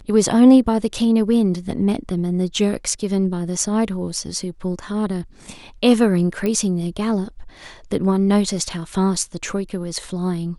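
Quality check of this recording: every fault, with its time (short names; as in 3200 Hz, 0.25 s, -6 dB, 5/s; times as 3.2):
6.46 pop -11 dBFS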